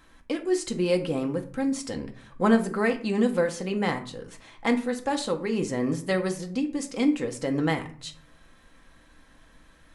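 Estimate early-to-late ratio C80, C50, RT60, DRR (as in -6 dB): 17.0 dB, 13.0 dB, 0.50 s, 3.5 dB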